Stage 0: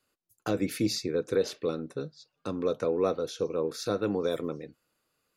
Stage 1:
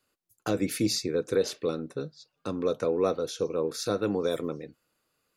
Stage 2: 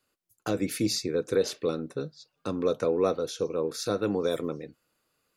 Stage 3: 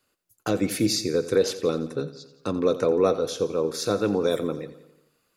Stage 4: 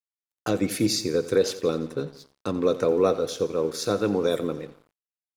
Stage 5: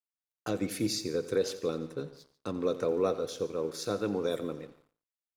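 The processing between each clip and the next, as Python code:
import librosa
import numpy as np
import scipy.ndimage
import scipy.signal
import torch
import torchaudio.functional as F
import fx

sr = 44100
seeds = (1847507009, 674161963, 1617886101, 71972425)

y1 = fx.dynamic_eq(x, sr, hz=8900.0, q=0.8, threshold_db=-54.0, ratio=4.0, max_db=5)
y1 = y1 * 10.0 ** (1.0 / 20.0)
y2 = fx.rider(y1, sr, range_db=4, speed_s=2.0)
y3 = fx.echo_feedback(y2, sr, ms=87, feedback_pct=57, wet_db=-15.0)
y3 = y3 * 10.0 ** (4.0 / 20.0)
y4 = np.sign(y3) * np.maximum(np.abs(y3) - 10.0 ** (-49.5 / 20.0), 0.0)
y5 = y4 + 10.0 ** (-20.0 / 20.0) * np.pad(y4, (int(143 * sr / 1000.0), 0))[:len(y4)]
y5 = y5 * 10.0 ** (-7.5 / 20.0)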